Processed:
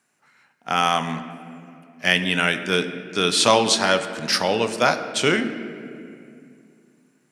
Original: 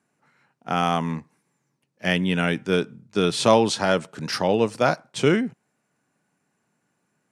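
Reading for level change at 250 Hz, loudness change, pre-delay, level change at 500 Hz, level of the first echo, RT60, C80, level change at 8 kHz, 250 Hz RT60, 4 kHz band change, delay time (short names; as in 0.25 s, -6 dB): -2.0 dB, +2.5 dB, 4 ms, -0.5 dB, none, 2.5 s, 11.5 dB, +8.0 dB, 3.0 s, +7.5 dB, none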